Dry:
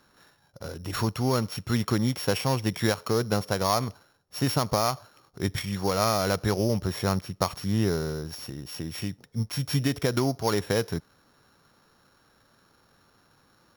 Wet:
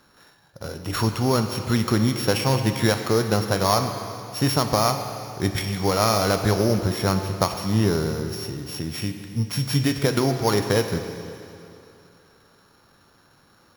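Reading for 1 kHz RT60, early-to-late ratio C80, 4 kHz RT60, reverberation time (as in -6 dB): 2.7 s, 7.5 dB, 2.7 s, 2.7 s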